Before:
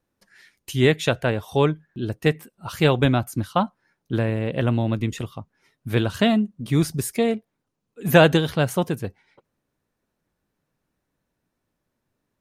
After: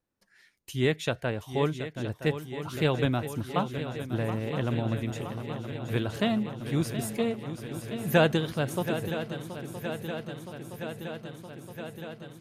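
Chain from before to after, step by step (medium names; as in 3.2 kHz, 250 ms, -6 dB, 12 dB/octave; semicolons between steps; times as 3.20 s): shuffle delay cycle 968 ms, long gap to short 3:1, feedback 73%, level -11 dB; trim -8 dB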